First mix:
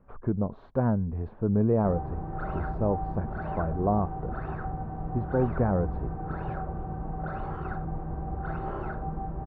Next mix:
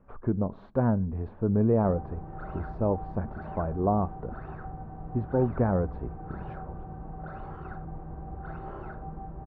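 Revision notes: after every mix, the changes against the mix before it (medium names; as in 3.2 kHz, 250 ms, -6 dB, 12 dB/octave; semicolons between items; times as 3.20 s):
background -6.0 dB; reverb: on, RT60 0.50 s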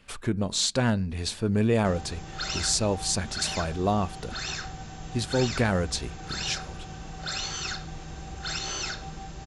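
master: remove low-pass 1.1 kHz 24 dB/octave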